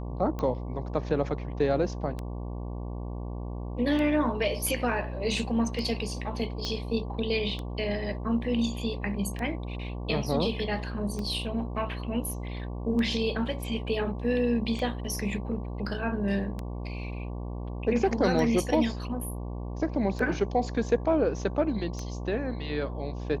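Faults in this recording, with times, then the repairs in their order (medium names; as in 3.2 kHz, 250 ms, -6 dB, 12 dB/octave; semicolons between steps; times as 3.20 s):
buzz 60 Hz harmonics 19 -35 dBFS
tick 33 1/3 rpm -21 dBFS
6.65 s: pop -19 dBFS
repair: de-click; de-hum 60 Hz, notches 19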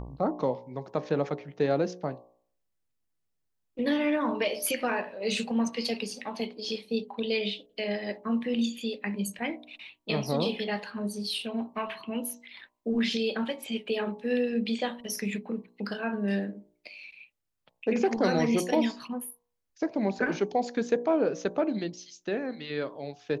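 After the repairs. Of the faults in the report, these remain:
6.65 s: pop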